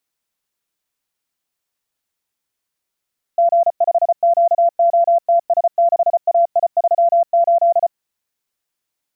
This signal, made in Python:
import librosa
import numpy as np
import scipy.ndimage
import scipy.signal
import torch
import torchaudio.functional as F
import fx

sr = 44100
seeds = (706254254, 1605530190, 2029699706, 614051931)

y = fx.morse(sr, text='G5QOTS6AI38', wpm=34, hz=683.0, level_db=-9.5)